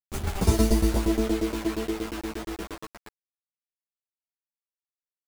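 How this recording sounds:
tremolo saw down 8.5 Hz, depth 95%
a quantiser's noise floor 6 bits, dither none
a shimmering, thickened sound

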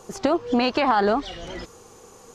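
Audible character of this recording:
background noise floor −49 dBFS
spectral slope −3.0 dB per octave

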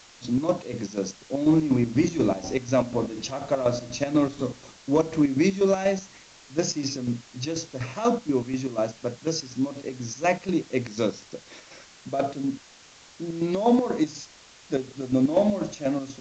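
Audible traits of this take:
chopped level 4.1 Hz, depth 65%, duty 55%
a quantiser's noise floor 8 bits, dither triangular
A-law companding

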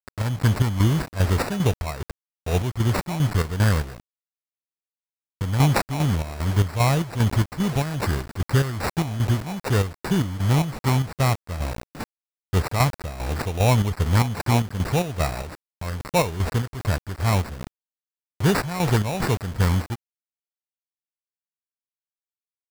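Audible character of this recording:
a quantiser's noise floor 6 bits, dither none
chopped level 2.5 Hz, depth 60%, duty 55%
aliases and images of a low sample rate 3,200 Hz, jitter 0%

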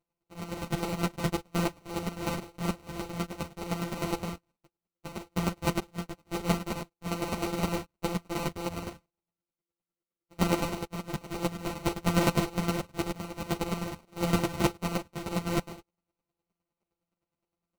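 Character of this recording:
a buzz of ramps at a fixed pitch in blocks of 256 samples
chopped level 9.7 Hz, depth 65%, duty 15%
aliases and images of a low sample rate 1,700 Hz, jitter 0%
a shimmering, thickened sound

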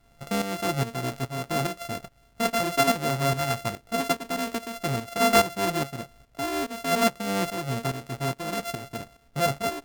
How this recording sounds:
a buzz of ramps at a fixed pitch in blocks of 64 samples
tremolo saw up 2.4 Hz, depth 70%
a quantiser's noise floor 12 bits, dither none

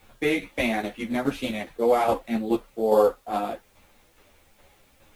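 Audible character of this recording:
tremolo saw down 2.4 Hz, depth 55%
a quantiser's noise floor 12 bits, dither triangular
a shimmering, thickened sound

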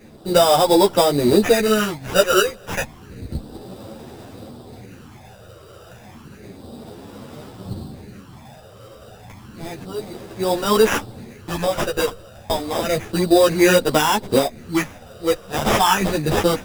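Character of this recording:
phaser sweep stages 8, 0.31 Hz, lowest notch 250–4,800 Hz
aliases and images of a low sample rate 4,300 Hz, jitter 0%
a shimmering, thickened sound

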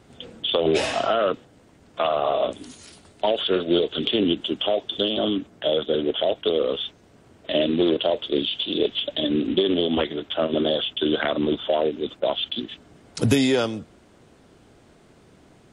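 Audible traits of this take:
background noise floor −54 dBFS
spectral slope −3.0 dB per octave

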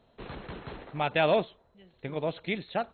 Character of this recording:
MP2

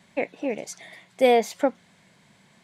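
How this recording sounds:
background noise floor −60 dBFS
spectral slope −3.5 dB per octave

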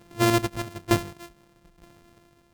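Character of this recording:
a buzz of ramps at a fixed pitch in blocks of 128 samples
tremolo saw down 1.1 Hz, depth 80%
Ogg Vorbis

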